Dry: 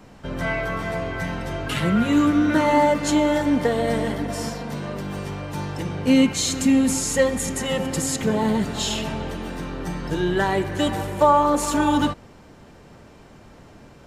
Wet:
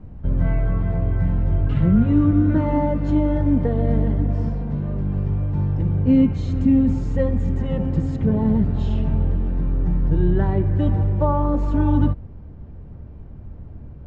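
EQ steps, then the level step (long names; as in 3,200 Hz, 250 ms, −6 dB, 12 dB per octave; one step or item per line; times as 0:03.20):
high-frequency loss of the air 140 metres
spectral tilt −4.5 dB per octave
parametric band 74 Hz +8 dB 1.8 octaves
−8.5 dB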